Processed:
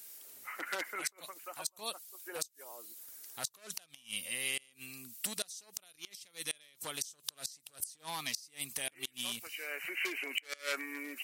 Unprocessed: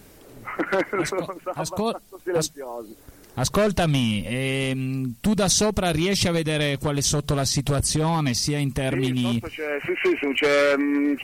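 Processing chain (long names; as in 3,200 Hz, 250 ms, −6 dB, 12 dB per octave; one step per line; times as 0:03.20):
first difference
gate with flip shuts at −22 dBFS, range −27 dB
level +2 dB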